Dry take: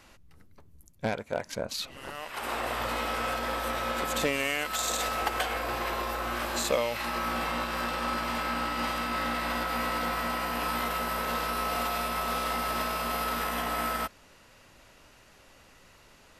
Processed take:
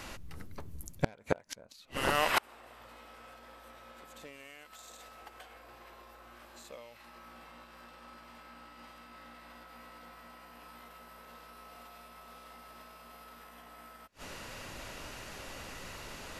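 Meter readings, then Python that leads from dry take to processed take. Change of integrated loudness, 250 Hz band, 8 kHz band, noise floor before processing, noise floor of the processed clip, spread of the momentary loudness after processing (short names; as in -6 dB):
-9.5 dB, -11.0 dB, -12.0 dB, -57 dBFS, -56 dBFS, 16 LU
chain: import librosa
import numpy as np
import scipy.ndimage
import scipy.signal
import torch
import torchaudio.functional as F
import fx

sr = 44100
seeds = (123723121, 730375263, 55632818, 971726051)

y = fx.gate_flip(x, sr, shuts_db=-25.0, range_db=-33)
y = y * 10.0 ** (11.0 / 20.0)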